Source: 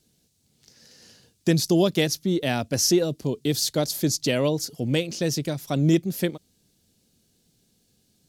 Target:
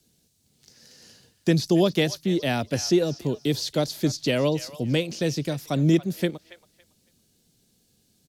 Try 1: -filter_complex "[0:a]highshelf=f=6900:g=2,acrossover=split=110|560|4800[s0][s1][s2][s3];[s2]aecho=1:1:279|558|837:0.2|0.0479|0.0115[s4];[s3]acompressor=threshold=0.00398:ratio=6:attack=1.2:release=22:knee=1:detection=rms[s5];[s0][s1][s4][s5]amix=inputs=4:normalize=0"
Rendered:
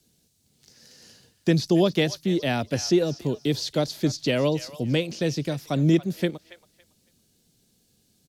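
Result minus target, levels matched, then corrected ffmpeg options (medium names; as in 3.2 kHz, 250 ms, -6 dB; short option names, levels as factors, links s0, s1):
compression: peak gain reduction +5.5 dB
-filter_complex "[0:a]highshelf=f=6900:g=2,acrossover=split=110|560|4800[s0][s1][s2][s3];[s2]aecho=1:1:279|558|837:0.2|0.0479|0.0115[s4];[s3]acompressor=threshold=0.00841:ratio=6:attack=1.2:release=22:knee=1:detection=rms[s5];[s0][s1][s4][s5]amix=inputs=4:normalize=0"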